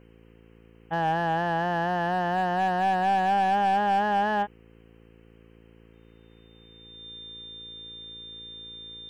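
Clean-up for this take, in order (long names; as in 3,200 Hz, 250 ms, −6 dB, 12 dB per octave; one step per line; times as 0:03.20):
clipped peaks rebuilt −18.5 dBFS
hum removal 56.2 Hz, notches 9
notch filter 3,600 Hz, Q 30
downward expander −46 dBFS, range −21 dB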